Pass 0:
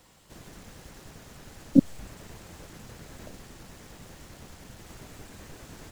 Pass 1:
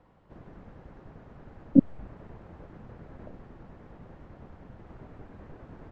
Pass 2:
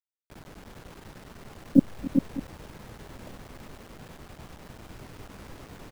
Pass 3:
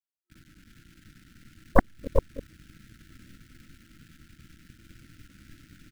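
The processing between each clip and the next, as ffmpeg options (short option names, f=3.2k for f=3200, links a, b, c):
-af "lowpass=1.2k"
-af "acrusher=bits=7:mix=0:aa=0.000001,aecho=1:1:280|395|601:0.133|0.501|0.141"
-af "afftfilt=real='re*(1-between(b*sr/4096,350,1300))':imag='im*(1-between(b*sr/4096,350,1300))':win_size=4096:overlap=0.75,aeval=exprs='0.708*(cos(1*acos(clip(val(0)/0.708,-1,1)))-cos(1*PI/2))+0.282*(cos(3*acos(clip(val(0)/0.708,-1,1)))-cos(3*PI/2))+0.0501*(cos(7*acos(clip(val(0)/0.708,-1,1)))-cos(7*PI/2))+0.282*(cos(8*acos(clip(val(0)/0.708,-1,1)))-cos(8*PI/2))':c=same,volume=-3.5dB"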